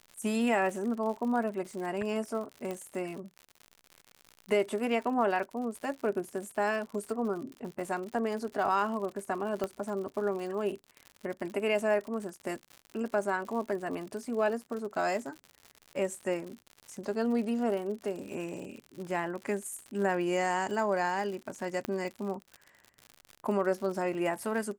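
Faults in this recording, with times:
surface crackle 95 per second −38 dBFS
0:02.71: click −23 dBFS
0:09.64: click −19 dBFS
0:21.85: click −19 dBFS

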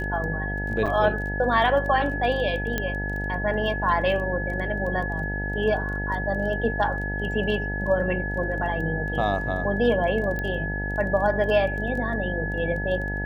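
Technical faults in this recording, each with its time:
mains buzz 50 Hz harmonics 18 −30 dBFS
surface crackle 14 per second −33 dBFS
whistle 1,700 Hz −30 dBFS
0:00.86–0:00.87: drop-out 6.1 ms
0:02.78: click −11 dBFS
0:10.39: click −17 dBFS

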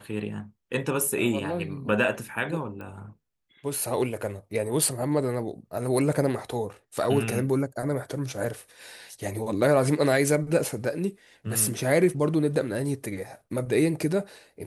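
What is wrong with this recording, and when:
0:02.81: click −28 dBFS

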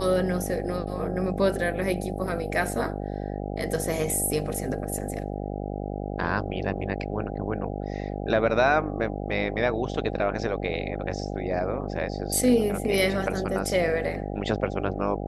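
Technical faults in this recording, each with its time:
mains buzz 50 Hz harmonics 16 −32 dBFS

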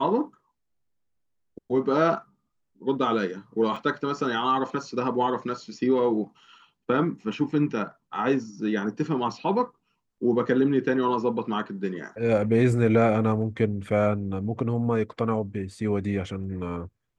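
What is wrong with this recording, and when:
0:03.76: drop-out 3.2 ms

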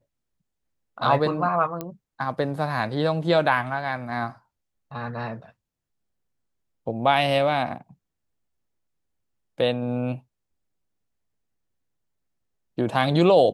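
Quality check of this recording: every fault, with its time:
0:01.81: click −16 dBFS

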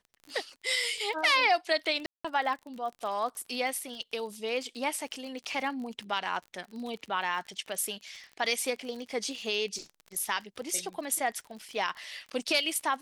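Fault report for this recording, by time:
surface crackle 45 per second −38 dBFS
0:02.06–0:02.25: drop-out 185 ms

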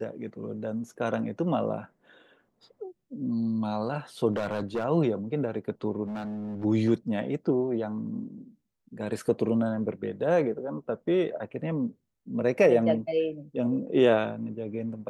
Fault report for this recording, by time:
0:04.33–0:04.85: clipping −25 dBFS
0:06.05–0:06.65: clipping −31.5 dBFS

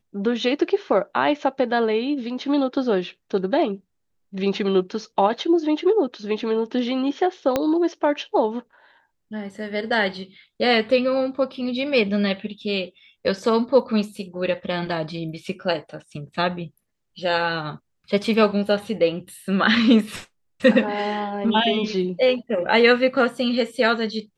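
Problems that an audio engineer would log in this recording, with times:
0:07.56: click −7 dBFS

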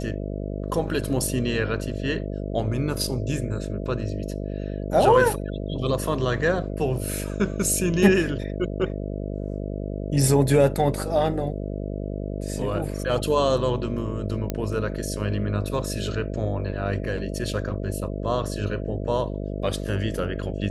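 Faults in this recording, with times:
mains buzz 50 Hz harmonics 13 −30 dBFS
0:14.50: click −12 dBFS

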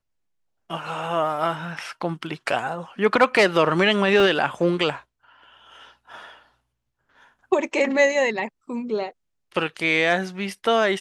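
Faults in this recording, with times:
0:04.20: drop-out 2.3 ms

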